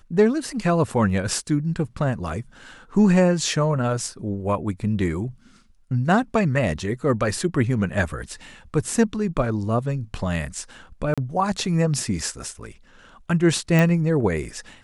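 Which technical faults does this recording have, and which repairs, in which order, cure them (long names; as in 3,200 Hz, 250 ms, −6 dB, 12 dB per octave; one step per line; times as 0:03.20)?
0:11.14–0:11.18: drop-out 36 ms
0:13.79: click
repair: click removal
repair the gap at 0:11.14, 36 ms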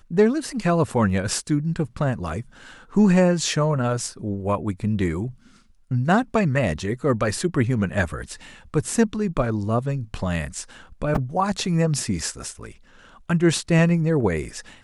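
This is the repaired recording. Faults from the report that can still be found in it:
none of them is left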